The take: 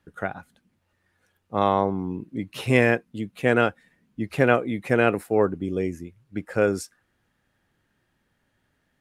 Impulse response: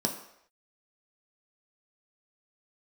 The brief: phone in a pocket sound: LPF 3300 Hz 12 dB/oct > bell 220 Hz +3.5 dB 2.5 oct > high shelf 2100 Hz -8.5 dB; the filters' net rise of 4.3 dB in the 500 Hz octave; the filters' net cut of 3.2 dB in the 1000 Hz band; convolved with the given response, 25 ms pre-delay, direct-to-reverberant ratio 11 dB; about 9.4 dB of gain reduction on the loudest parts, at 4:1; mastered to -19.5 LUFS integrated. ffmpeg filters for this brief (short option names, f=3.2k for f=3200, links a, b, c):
-filter_complex "[0:a]equalizer=f=500:t=o:g=4.5,equalizer=f=1k:t=o:g=-6,acompressor=threshold=-24dB:ratio=4,asplit=2[a][b];[1:a]atrim=start_sample=2205,adelay=25[c];[b][c]afir=irnorm=-1:irlink=0,volume=-17.5dB[d];[a][d]amix=inputs=2:normalize=0,lowpass=3.3k,equalizer=f=220:t=o:w=2.5:g=3.5,highshelf=f=2.1k:g=-8.5,volume=7.5dB"